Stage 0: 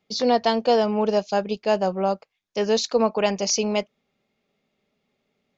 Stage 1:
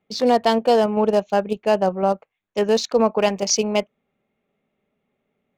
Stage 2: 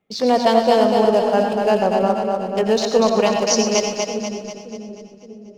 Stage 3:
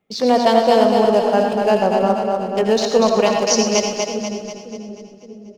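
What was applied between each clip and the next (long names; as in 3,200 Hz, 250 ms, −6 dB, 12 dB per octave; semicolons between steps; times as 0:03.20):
adaptive Wiener filter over 9 samples; in parallel at −3 dB: output level in coarse steps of 23 dB
echo with a time of its own for lows and highs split 400 Hz, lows 571 ms, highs 243 ms, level −4 dB; convolution reverb RT60 0.25 s, pre-delay 85 ms, DRR 6 dB
single-tap delay 77 ms −12.5 dB; level +1 dB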